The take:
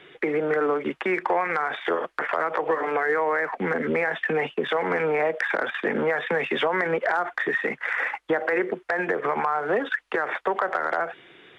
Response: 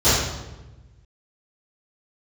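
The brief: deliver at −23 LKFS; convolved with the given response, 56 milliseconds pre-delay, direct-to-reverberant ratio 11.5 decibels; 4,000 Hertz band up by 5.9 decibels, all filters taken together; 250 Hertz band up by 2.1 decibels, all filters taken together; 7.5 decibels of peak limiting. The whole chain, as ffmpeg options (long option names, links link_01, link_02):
-filter_complex "[0:a]equalizer=frequency=250:width_type=o:gain=3,equalizer=frequency=4000:width_type=o:gain=7.5,alimiter=limit=-18dB:level=0:latency=1,asplit=2[link_01][link_02];[1:a]atrim=start_sample=2205,adelay=56[link_03];[link_02][link_03]afir=irnorm=-1:irlink=0,volume=-33.5dB[link_04];[link_01][link_04]amix=inputs=2:normalize=0,volume=4dB"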